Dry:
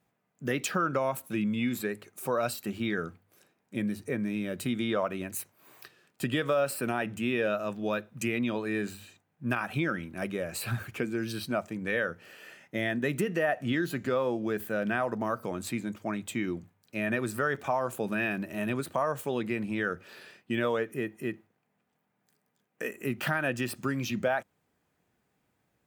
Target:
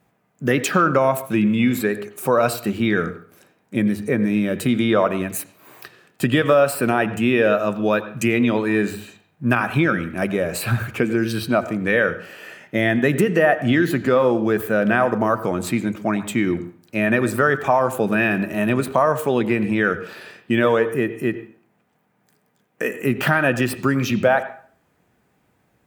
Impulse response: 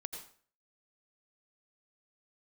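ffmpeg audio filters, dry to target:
-filter_complex "[0:a]asplit=2[s0][s1];[1:a]atrim=start_sample=2205,lowpass=3100[s2];[s1][s2]afir=irnorm=-1:irlink=0,volume=0.668[s3];[s0][s3]amix=inputs=2:normalize=0,volume=2.66"

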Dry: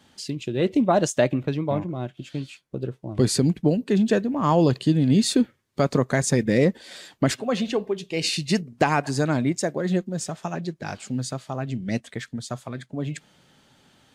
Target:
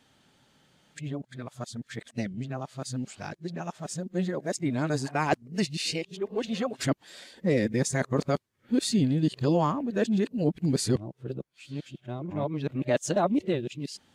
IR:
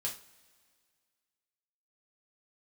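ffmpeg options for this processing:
-af "areverse,volume=0.531"

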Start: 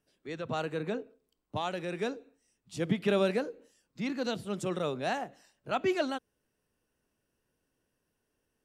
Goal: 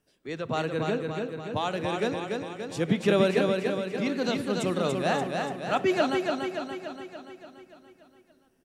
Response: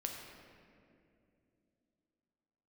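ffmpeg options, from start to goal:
-filter_complex "[0:a]aecho=1:1:288|576|864|1152|1440|1728|2016|2304:0.631|0.366|0.212|0.123|0.0714|0.0414|0.024|0.0139,asplit=2[s0][s1];[1:a]atrim=start_sample=2205,asetrate=32634,aresample=44100[s2];[s1][s2]afir=irnorm=-1:irlink=0,volume=0.188[s3];[s0][s3]amix=inputs=2:normalize=0,volume=1.41"

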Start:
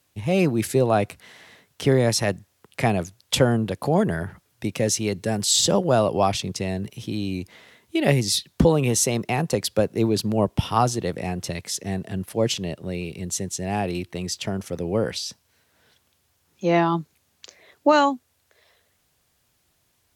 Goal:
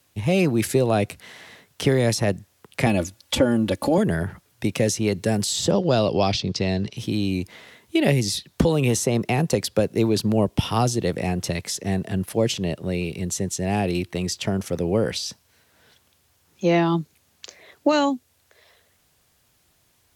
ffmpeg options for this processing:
-filter_complex "[0:a]asettb=1/sr,asplit=3[s0][s1][s2];[s0]atrim=end=2.864[s3];[s1]atrim=start=2.86:end=3.98,asetpts=PTS-STARTPTS,afade=t=in:d=0.004:c=qsin,afade=t=out:st=1.116:d=0.004:c=qsin,aecho=1:1:3.5:0.84,atrim=end_sample=49392[s4];[s2]atrim=start=3.976[s5];[s3][s4]acrossfade=d=0.004:c1=hsin:c2=qsin[s6];[s6][s5]acrossfade=d=0.004:c1=qsin:c2=hsin,asettb=1/sr,asplit=3[s7][s8][s9];[s7]atrim=end=5.714[s10];[s8]atrim=start=5.71:end=6.97,asetpts=PTS-STARTPTS,afade=t=in:d=0.004:c=qsin,afade=t=out:st=1.256:d=0.004:c=qsin,lowpass=f=4700:t=q:w=2.6[s11];[s9]atrim=start=6.966[s12];[s10][s11]acrossfade=d=0.004:c1=hsin:c2=qsin[s13];[s13][s12]acrossfade=d=0.004:c1=qsin:c2=hsin,acrossover=split=660|1800[s14][s15][s16];[s14]acompressor=threshold=0.1:ratio=4[s17];[s15]acompressor=threshold=0.0126:ratio=4[s18];[s16]acompressor=threshold=0.0316:ratio=4[s19];[s17][s18][s19]amix=inputs=3:normalize=0,volume=1.58"

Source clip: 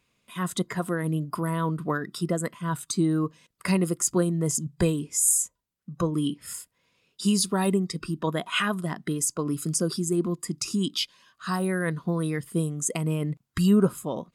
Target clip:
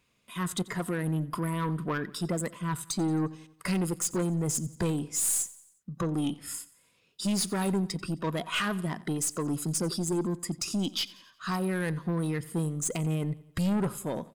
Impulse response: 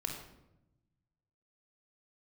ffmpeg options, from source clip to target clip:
-filter_complex "[0:a]asettb=1/sr,asplit=3[s0][s1][s2];[s0]atrim=end=10.814[s3];[s1]atrim=start=10.81:end=11.75,asetpts=PTS-STARTPTS,afade=t=in:d=0.004:c=qsin,afade=t=out:st=0.936:d=0.004:c=qsin,equalizer=f=9100:w=4.8:g=-7[s4];[s2]atrim=start=11.746[s5];[s3][s4]acrossfade=d=0.004:c1=hsin:c2=qsin[s6];[s6][s5]acrossfade=d=0.004:c1=qsin:c2=hsin,aeval=exprs='(tanh(15.8*val(0)+0.15)-tanh(0.15))/15.8':c=same,asplit=2[s7][s8];[s8]aecho=0:1:89|178|267|356:0.1|0.05|0.025|0.0125[s9];[s7][s9]amix=inputs=2:normalize=0"

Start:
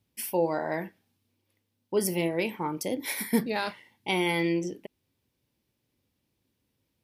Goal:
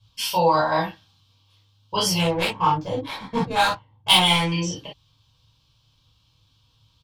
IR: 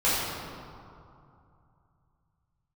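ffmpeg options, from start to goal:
-filter_complex "[0:a]firequalizer=gain_entry='entry(130,0);entry(190,-17);entry(360,-21);entry(1100,-1);entry(2000,-17);entry(3100,4);entry(4700,1);entry(10000,-18)':delay=0.05:min_phase=1,asettb=1/sr,asplit=3[s0][s1][s2];[s0]atrim=end=2.184[s3];[s1]atrim=start=2.18:end=4.52,asetpts=PTS-STARTPTS,afade=t=in:d=0.004:c=qsin,afade=t=out:st=2.336:d=0.004:c=qsin,adynamicsmooth=sensitivity=5:basefreq=540[s4];[s2]atrim=start=4.516[s5];[s3][s4]acrossfade=d=0.004:c1=hsin:c2=qsin[s6];[s6][s5]acrossfade=d=0.004:c1=qsin:c2=hsin[s7];[1:a]atrim=start_sample=2205,atrim=end_sample=3087[s8];[s7][s8]afir=irnorm=-1:irlink=0,volume=2.66"

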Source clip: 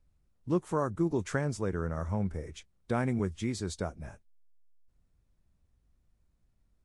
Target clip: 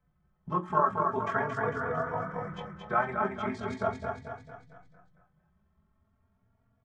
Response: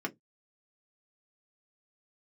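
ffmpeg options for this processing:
-filter_complex "[0:a]lowpass=2100,tiltshelf=f=700:g=-7.5,acrossover=split=530[s0][s1];[s0]acompressor=threshold=0.00447:ratio=6[s2];[s2][s1]amix=inputs=2:normalize=0,tremolo=f=44:d=0.571,aecho=1:1:225|450|675|900|1125|1350:0.596|0.298|0.149|0.0745|0.0372|0.0186[s3];[1:a]atrim=start_sample=2205,asetrate=26019,aresample=44100[s4];[s3][s4]afir=irnorm=-1:irlink=0,asplit=2[s5][s6];[s6]adelay=3.5,afreqshift=0.39[s7];[s5][s7]amix=inputs=2:normalize=1,volume=1.68"

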